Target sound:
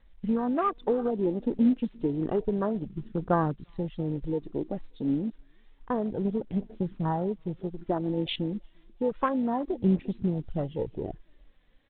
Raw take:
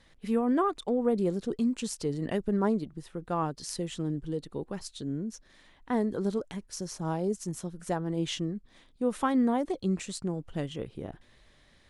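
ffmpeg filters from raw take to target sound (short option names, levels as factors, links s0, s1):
-af "acompressor=threshold=0.0398:ratio=4,tremolo=f=51:d=0.182,aecho=1:1:349|698|1047:0.0708|0.0354|0.0177,aphaser=in_gain=1:out_gain=1:delay=4.1:decay=0.45:speed=0.3:type=triangular,aresample=16000,acrusher=bits=4:mode=log:mix=0:aa=0.000001,aresample=44100,acontrast=36,afwtdn=0.0224" -ar 8000 -c:a pcm_mulaw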